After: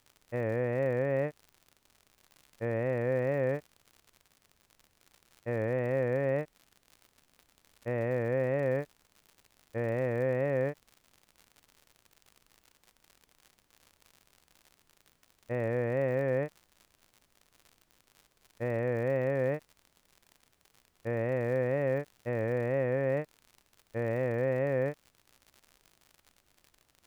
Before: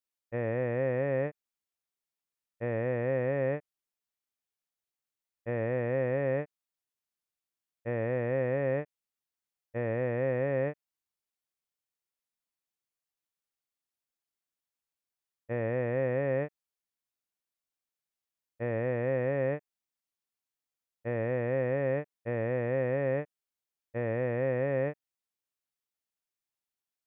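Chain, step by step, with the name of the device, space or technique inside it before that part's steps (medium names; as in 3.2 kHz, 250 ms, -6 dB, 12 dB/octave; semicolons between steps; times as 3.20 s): vinyl LP (wow and flutter 47 cents; crackle 90 per s -43 dBFS; pink noise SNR 39 dB)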